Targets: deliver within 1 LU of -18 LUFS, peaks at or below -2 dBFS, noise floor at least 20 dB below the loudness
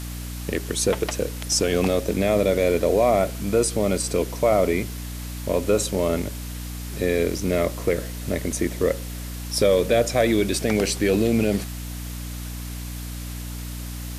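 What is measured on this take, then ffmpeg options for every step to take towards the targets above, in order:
hum 60 Hz; harmonics up to 300 Hz; hum level -31 dBFS; noise floor -33 dBFS; noise floor target -43 dBFS; loudness -23.0 LUFS; peak -7.5 dBFS; loudness target -18.0 LUFS
-> -af "bandreject=f=60:t=h:w=6,bandreject=f=120:t=h:w=6,bandreject=f=180:t=h:w=6,bandreject=f=240:t=h:w=6,bandreject=f=300:t=h:w=6"
-af "afftdn=nr=10:nf=-33"
-af "volume=5dB"

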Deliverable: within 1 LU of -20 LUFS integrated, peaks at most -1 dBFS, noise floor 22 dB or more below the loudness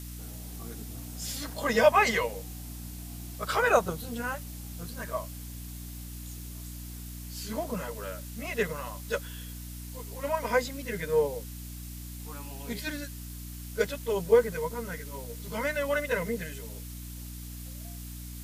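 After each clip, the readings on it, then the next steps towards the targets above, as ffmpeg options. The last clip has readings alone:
hum 60 Hz; harmonics up to 300 Hz; hum level -39 dBFS; noise floor -41 dBFS; noise floor target -54 dBFS; loudness -32.0 LUFS; peak -8.5 dBFS; loudness target -20.0 LUFS
-> -af "bandreject=f=60:t=h:w=6,bandreject=f=120:t=h:w=6,bandreject=f=180:t=h:w=6,bandreject=f=240:t=h:w=6,bandreject=f=300:t=h:w=6"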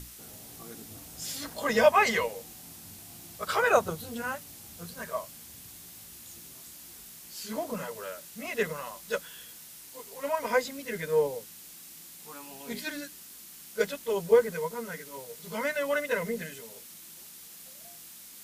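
hum none; noise floor -48 dBFS; noise floor target -52 dBFS
-> -af "afftdn=nr=6:nf=-48"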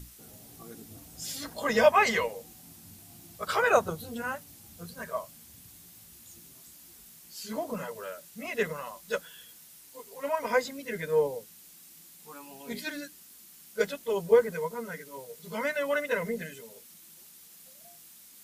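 noise floor -53 dBFS; loudness -30.0 LUFS; peak -9.0 dBFS; loudness target -20.0 LUFS
-> -af "volume=10dB,alimiter=limit=-1dB:level=0:latency=1"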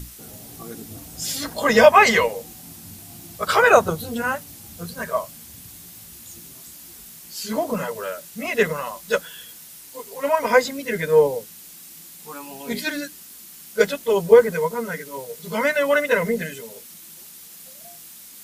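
loudness -20.5 LUFS; peak -1.0 dBFS; noise floor -43 dBFS

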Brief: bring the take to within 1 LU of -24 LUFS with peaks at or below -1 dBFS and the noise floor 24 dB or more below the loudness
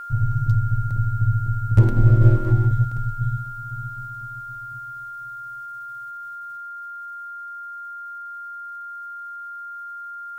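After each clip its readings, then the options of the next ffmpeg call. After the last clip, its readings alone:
steady tone 1400 Hz; tone level -32 dBFS; loudness -24.5 LUFS; peak -3.5 dBFS; loudness target -24.0 LUFS
-> -af "bandreject=f=1.4k:w=30"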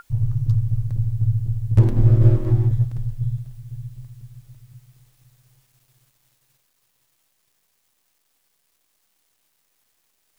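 steady tone none; loudness -20.5 LUFS; peak -3.5 dBFS; loudness target -24.0 LUFS
-> -af "volume=-3.5dB"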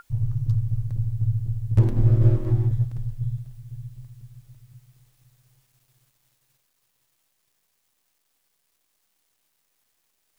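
loudness -24.0 LUFS; peak -7.0 dBFS; noise floor -73 dBFS

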